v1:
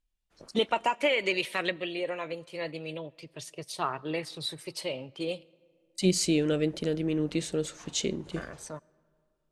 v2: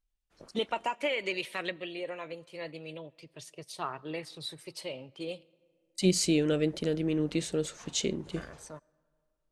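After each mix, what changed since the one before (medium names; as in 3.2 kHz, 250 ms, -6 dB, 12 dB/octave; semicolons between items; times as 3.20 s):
first voice -5.0 dB; second voice: send off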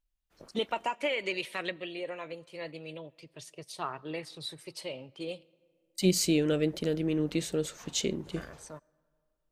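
second voice: remove steep low-pass 11 kHz 36 dB/octave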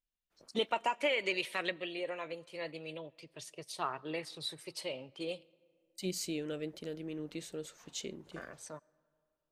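second voice -10.0 dB; master: add bass shelf 210 Hz -6.5 dB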